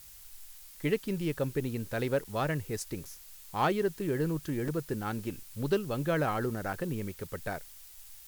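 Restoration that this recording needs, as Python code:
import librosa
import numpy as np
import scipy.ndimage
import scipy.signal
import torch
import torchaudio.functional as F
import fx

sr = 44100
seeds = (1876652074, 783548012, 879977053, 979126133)

y = fx.fix_declip(x, sr, threshold_db=-18.5)
y = fx.fix_interpolate(y, sr, at_s=(2.24, 3.05, 4.68, 6.73), length_ms=4.5)
y = fx.noise_reduce(y, sr, print_start_s=7.64, print_end_s=8.14, reduce_db=26.0)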